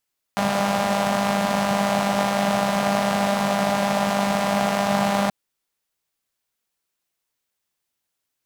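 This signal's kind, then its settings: four-cylinder engine model, steady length 4.93 s, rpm 6000, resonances 200/660 Hz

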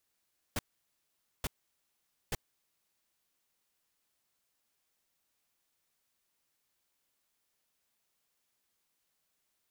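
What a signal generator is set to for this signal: noise bursts pink, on 0.03 s, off 0.85 s, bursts 3, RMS -33.5 dBFS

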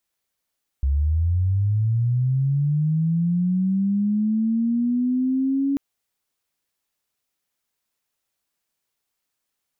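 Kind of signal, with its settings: chirp linear 66 Hz -> 280 Hz -17 dBFS -> -18.5 dBFS 4.94 s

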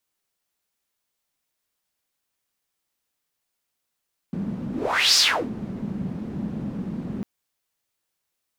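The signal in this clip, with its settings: whoosh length 2.90 s, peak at 0.84, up 0.49 s, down 0.35 s, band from 200 Hz, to 5200 Hz, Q 4.5, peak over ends 13 dB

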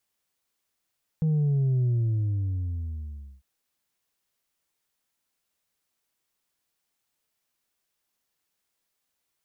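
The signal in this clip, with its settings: sub drop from 160 Hz, over 2.20 s, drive 2.5 dB, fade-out 1.58 s, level -21 dB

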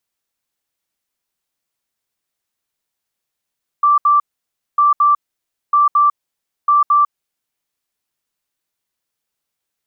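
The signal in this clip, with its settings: beep pattern sine 1170 Hz, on 0.15 s, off 0.07 s, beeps 2, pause 0.58 s, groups 4, -8.5 dBFS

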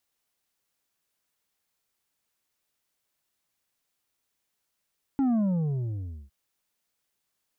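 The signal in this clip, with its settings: sub drop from 280 Hz, over 1.11 s, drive 6 dB, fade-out 0.96 s, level -22 dB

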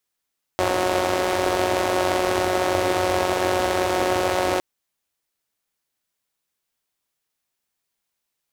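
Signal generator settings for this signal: four-cylinder engine model, steady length 4.01 s, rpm 5500, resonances 95/350/570 Hz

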